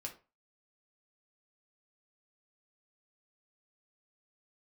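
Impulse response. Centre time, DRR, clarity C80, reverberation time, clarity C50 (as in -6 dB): 12 ms, 0.5 dB, 18.5 dB, 0.30 s, 12.0 dB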